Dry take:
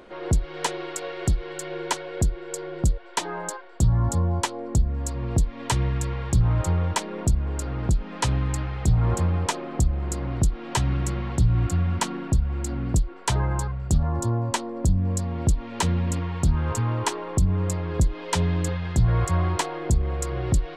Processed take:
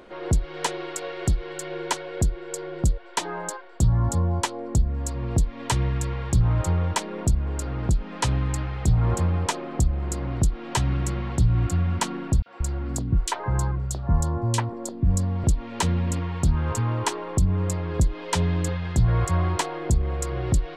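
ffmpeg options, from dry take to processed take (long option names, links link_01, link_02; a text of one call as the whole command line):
ffmpeg -i in.wav -filter_complex "[0:a]asettb=1/sr,asplit=3[link_01][link_02][link_03];[link_01]atrim=end=12.424[link_04];[link_02]atrim=start=12.42:end=15.44,asetpts=PTS-STARTPTS,afade=type=in:duration=0.004:curve=qsin,afade=type=out:start_time=3.016:duration=0.004:curve=qsin,acrossover=split=380|2600[link_05][link_06][link_07];[link_06]adelay=40[link_08];[link_05]adelay=180[link_09];[link_09][link_08][link_07]amix=inputs=3:normalize=0,atrim=end_sample=133182[link_10];[link_03]atrim=start=15.436[link_11];[link_04][link_10]acrossfade=duration=0.004:curve1=hsin:curve2=qsin[link_12];[link_12][link_11]acrossfade=duration=0.004:curve1=qsin:curve2=hsin" out.wav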